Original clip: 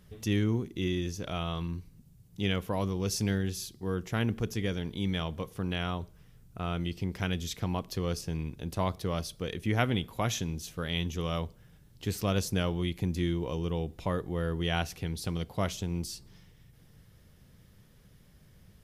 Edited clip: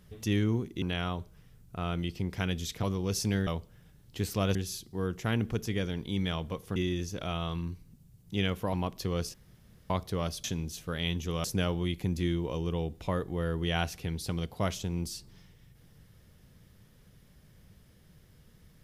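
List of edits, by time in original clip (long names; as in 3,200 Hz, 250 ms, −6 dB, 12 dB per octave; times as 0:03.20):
0:00.82–0:02.79: swap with 0:05.64–0:07.65
0:08.26–0:08.82: fill with room tone
0:09.36–0:10.34: remove
0:11.34–0:12.42: move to 0:03.43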